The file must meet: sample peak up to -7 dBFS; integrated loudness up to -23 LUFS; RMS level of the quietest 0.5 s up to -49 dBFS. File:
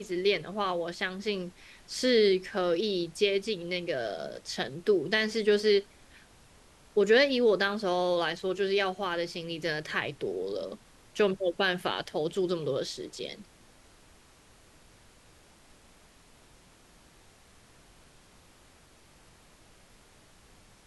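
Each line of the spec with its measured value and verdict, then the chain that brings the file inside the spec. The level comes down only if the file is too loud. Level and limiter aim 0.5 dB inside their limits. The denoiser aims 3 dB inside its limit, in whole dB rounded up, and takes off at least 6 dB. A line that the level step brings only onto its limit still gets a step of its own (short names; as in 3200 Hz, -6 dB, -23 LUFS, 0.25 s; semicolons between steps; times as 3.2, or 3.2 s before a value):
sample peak -11.5 dBFS: OK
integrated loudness -29.0 LUFS: OK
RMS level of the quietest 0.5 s -58 dBFS: OK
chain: none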